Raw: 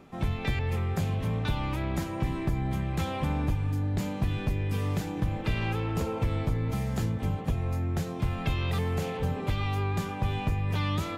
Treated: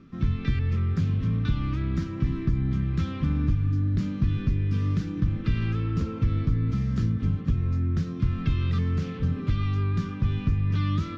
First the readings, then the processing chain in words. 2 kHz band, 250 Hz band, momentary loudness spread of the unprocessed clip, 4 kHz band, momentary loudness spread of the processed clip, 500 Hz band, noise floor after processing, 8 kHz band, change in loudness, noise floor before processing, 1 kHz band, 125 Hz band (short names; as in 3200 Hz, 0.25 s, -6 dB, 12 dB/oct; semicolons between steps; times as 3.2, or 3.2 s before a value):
-4.0 dB, +4.0 dB, 2 LU, -4.0 dB, 3 LU, -5.5 dB, -34 dBFS, n/a, +3.5 dB, -36 dBFS, -6.5 dB, +4.5 dB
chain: EQ curve 270 Hz 0 dB, 830 Hz -25 dB, 1200 Hz -5 dB, 2400 Hz -10 dB, 3900 Hz -8 dB, 5700 Hz -7 dB, 9200 Hz -30 dB; gain +4.5 dB